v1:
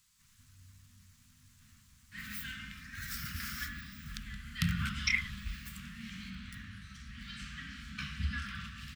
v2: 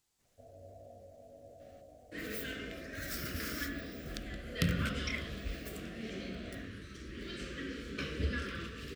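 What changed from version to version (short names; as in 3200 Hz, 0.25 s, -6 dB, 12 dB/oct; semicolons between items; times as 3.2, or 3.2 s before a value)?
speech -10.0 dB; master: remove inverse Chebyshev band-stop 320–720 Hz, stop band 40 dB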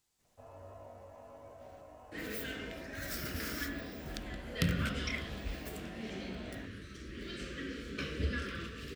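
first sound: remove rippled Chebyshev low-pass 730 Hz, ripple 3 dB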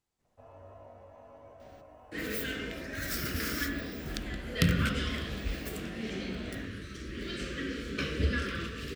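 speech: add high shelf 2300 Hz -11.5 dB; second sound +5.5 dB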